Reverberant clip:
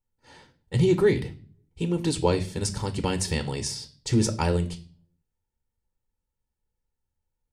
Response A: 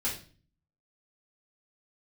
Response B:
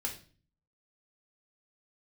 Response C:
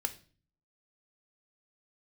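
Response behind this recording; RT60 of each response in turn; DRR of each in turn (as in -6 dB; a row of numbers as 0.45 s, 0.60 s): C; 0.40 s, 0.40 s, 0.40 s; -6.0 dB, 1.0 dB, 8.5 dB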